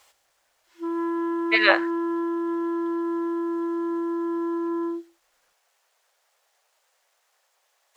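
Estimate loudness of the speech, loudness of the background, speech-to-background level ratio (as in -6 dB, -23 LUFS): -20.5 LUFS, -27.5 LUFS, 7.0 dB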